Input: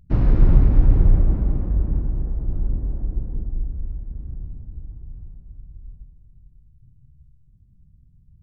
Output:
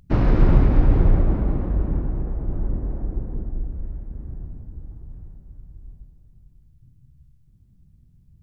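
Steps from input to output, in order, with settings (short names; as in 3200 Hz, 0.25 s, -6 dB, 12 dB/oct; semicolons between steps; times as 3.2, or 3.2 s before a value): low shelf 210 Hz -10.5 dB; gain +8 dB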